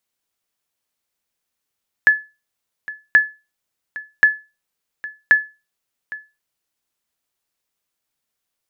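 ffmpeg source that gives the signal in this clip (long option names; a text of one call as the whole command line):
ffmpeg -f lavfi -i "aevalsrc='0.668*(sin(2*PI*1720*mod(t,1.08))*exp(-6.91*mod(t,1.08)/0.27)+0.119*sin(2*PI*1720*max(mod(t,1.08)-0.81,0))*exp(-6.91*max(mod(t,1.08)-0.81,0)/0.27))':duration=4.32:sample_rate=44100" out.wav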